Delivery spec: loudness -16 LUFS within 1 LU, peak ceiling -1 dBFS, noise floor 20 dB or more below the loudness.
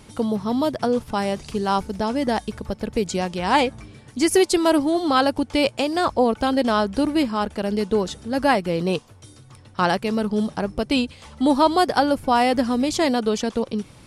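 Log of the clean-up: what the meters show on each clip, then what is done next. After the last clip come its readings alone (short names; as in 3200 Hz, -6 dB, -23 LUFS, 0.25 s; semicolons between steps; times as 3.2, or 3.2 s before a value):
loudness -22.0 LUFS; peak -5.5 dBFS; loudness target -16.0 LUFS
-> gain +6 dB; limiter -1 dBFS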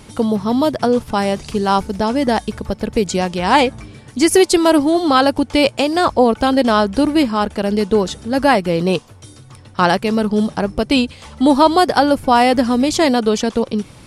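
loudness -16.0 LUFS; peak -1.0 dBFS; noise floor -42 dBFS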